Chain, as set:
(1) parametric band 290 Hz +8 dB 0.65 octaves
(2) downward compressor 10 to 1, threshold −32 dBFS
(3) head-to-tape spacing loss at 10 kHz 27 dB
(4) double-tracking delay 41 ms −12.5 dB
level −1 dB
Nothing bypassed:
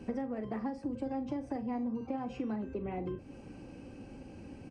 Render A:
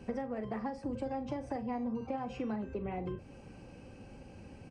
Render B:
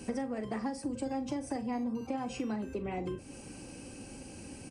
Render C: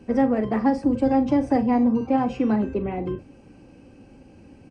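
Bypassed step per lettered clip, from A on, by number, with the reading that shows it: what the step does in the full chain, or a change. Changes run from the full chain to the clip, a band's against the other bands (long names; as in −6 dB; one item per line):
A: 1, 250 Hz band −3.5 dB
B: 3, 2 kHz band +4.5 dB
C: 2, change in crest factor −1.5 dB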